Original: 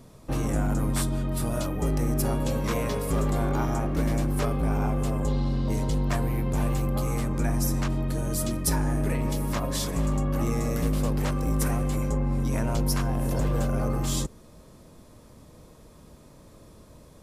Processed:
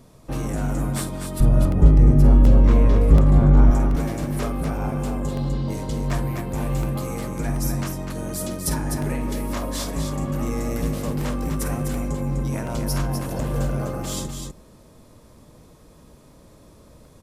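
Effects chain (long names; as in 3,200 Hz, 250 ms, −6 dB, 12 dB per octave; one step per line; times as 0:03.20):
0:01.40–0:03.71: RIAA equalisation playback
loudspeakers that aren't time-aligned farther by 17 metres −11 dB, 86 metres −6 dB
regular buffer underruns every 0.73 s, samples 64, repeat, from 0:00.99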